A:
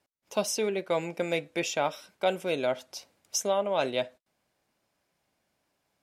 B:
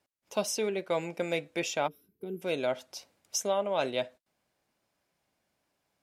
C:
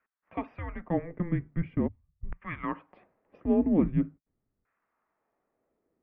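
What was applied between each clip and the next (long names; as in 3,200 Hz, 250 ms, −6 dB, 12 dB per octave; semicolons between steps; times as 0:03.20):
gain on a spectral selection 0:01.88–0:02.42, 470–11,000 Hz −26 dB; level −2 dB
auto-filter band-pass saw down 0.43 Hz 310–1,900 Hz; single-sideband voice off tune −350 Hz 230–2,800 Hz; level +8 dB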